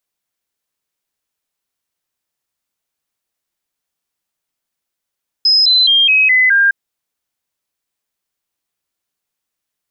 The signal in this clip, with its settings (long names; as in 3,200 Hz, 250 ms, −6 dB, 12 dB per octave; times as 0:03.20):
stepped sweep 5,090 Hz down, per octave 3, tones 6, 0.21 s, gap 0.00 s −7.5 dBFS